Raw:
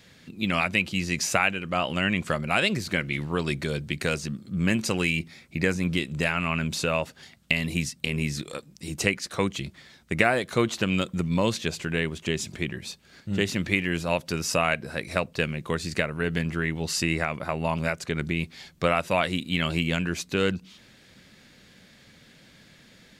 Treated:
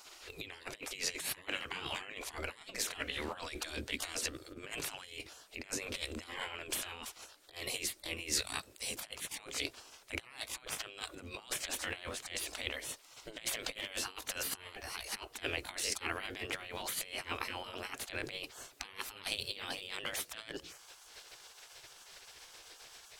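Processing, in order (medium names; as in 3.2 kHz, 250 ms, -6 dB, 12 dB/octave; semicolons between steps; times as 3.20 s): pitch bend over the whole clip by +2.5 st starting unshifted; compressor with a negative ratio -32 dBFS, ratio -0.5; spectral gate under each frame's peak -15 dB weak; trim +2 dB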